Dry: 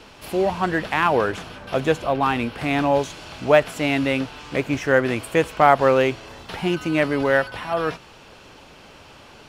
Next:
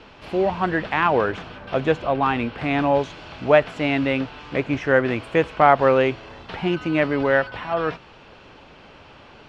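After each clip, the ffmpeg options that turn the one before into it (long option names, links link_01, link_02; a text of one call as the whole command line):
ffmpeg -i in.wav -af "lowpass=3500" out.wav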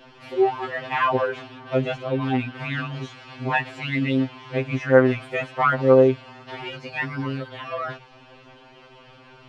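ffmpeg -i in.wav -af "afftfilt=real='re*2.45*eq(mod(b,6),0)':imag='im*2.45*eq(mod(b,6),0)':win_size=2048:overlap=0.75" out.wav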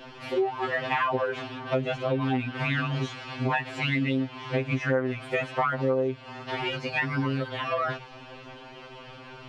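ffmpeg -i in.wav -af "acompressor=threshold=-27dB:ratio=8,volume=4dB" out.wav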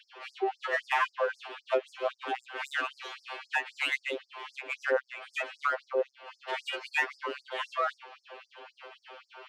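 ffmpeg -i in.wav -af "adynamicsmooth=sensitivity=4:basefreq=3700,afftfilt=real='re*gte(b*sr/1024,290*pow(4800/290,0.5+0.5*sin(2*PI*3.8*pts/sr)))':imag='im*gte(b*sr/1024,290*pow(4800/290,0.5+0.5*sin(2*PI*3.8*pts/sr)))':win_size=1024:overlap=0.75" out.wav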